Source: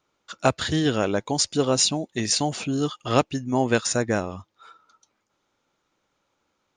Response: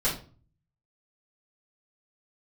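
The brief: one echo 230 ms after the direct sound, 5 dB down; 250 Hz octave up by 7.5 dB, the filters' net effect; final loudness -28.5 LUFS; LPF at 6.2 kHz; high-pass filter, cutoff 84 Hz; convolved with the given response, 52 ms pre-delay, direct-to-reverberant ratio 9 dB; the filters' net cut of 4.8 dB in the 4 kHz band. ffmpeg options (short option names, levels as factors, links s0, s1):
-filter_complex "[0:a]highpass=84,lowpass=6200,equalizer=f=250:t=o:g=9,equalizer=f=4000:t=o:g=-5,aecho=1:1:230:0.562,asplit=2[s0][s1];[1:a]atrim=start_sample=2205,adelay=52[s2];[s1][s2]afir=irnorm=-1:irlink=0,volume=0.112[s3];[s0][s3]amix=inputs=2:normalize=0,volume=0.335"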